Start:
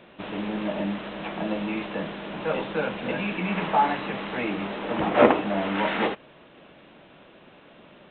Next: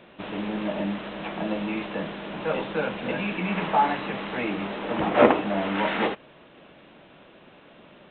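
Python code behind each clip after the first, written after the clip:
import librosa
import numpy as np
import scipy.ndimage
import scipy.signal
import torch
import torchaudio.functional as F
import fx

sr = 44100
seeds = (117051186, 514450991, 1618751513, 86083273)

y = x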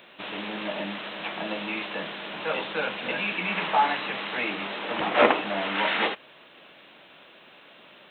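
y = fx.tilt_eq(x, sr, slope=3.5)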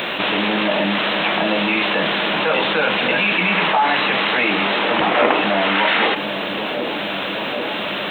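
y = fx.echo_wet_lowpass(x, sr, ms=784, feedback_pct=69, hz=560.0, wet_db=-22)
y = fx.env_flatten(y, sr, amount_pct=70)
y = y * 10.0 ** (1.5 / 20.0)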